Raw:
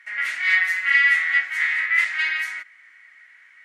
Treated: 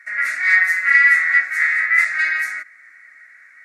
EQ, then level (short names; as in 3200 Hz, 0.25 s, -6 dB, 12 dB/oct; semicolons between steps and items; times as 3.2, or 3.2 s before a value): fixed phaser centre 620 Hz, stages 8; +7.0 dB